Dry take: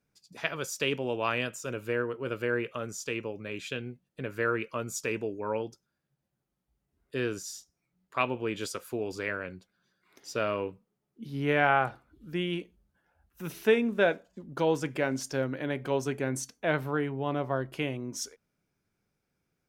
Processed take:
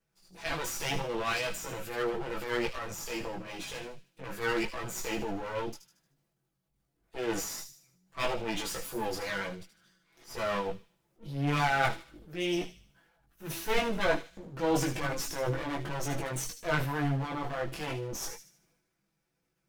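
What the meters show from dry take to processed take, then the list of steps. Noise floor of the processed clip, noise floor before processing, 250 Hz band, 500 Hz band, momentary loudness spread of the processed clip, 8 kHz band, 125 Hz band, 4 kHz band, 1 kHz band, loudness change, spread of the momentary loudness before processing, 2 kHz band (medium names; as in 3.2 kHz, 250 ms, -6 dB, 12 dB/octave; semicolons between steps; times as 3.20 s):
-80 dBFS, -82 dBFS, -2.5 dB, -4.0 dB, 14 LU, +1.5 dB, +0.5 dB, +1.5 dB, -0.5 dB, -2.0 dB, 13 LU, -2.0 dB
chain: comb filter that takes the minimum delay 6 ms; transient shaper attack -7 dB, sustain +8 dB; chorus voices 4, 0.4 Hz, delay 18 ms, depth 4.1 ms; on a send: feedback echo behind a high-pass 76 ms, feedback 43%, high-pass 3.4 kHz, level -8 dB; on the sum: trim +4.5 dB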